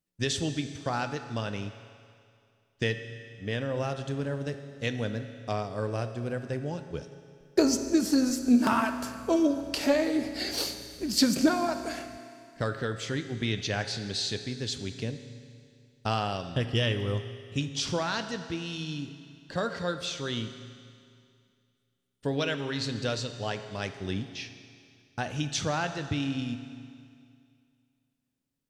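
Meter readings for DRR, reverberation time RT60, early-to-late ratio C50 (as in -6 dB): 8.0 dB, 2.3 s, 9.5 dB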